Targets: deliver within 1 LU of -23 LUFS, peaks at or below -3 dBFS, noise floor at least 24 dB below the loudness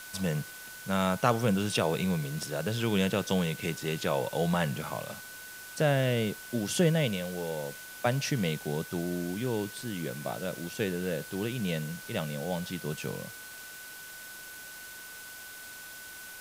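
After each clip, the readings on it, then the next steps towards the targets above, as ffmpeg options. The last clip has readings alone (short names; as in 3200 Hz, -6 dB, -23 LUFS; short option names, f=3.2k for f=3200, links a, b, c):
steady tone 1500 Hz; tone level -46 dBFS; noise floor -45 dBFS; noise floor target -55 dBFS; loudness -31.0 LUFS; peak -10.0 dBFS; loudness target -23.0 LUFS
-> -af "bandreject=f=1.5k:w=30"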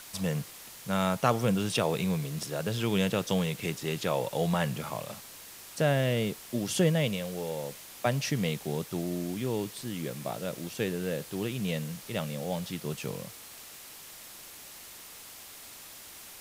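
steady tone none; noise floor -48 dBFS; noise floor target -55 dBFS
-> -af "afftdn=nr=7:nf=-48"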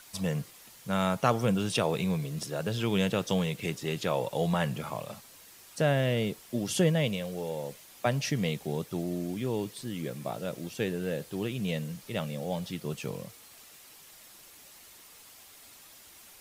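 noise floor -53 dBFS; noise floor target -55 dBFS
-> -af "afftdn=nr=6:nf=-53"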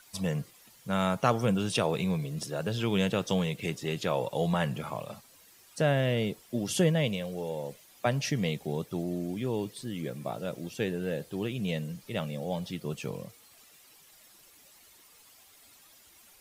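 noise floor -58 dBFS; loudness -31.5 LUFS; peak -10.0 dBFS; loudness target -23.0 LUFS
-> -af "volume=8.5dB,alimiter=limit=-3dB:level=0:latency=1"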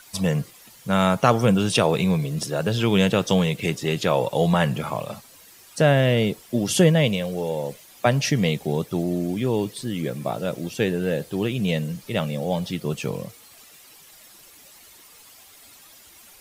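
loudness -23.0 LUFS; peak -3.0 dBFS; noise floor -49 dBFS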